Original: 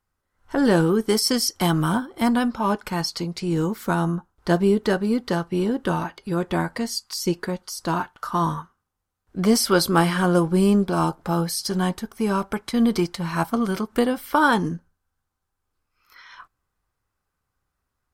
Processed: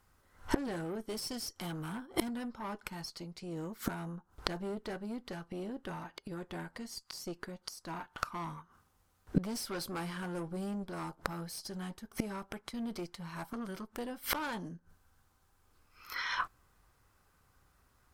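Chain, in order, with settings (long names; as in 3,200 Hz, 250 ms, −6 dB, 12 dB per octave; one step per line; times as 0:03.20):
tube saturation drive 20 dB, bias 0.5
gate with flip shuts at −28 dBFS, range −26 dB
level +12 dB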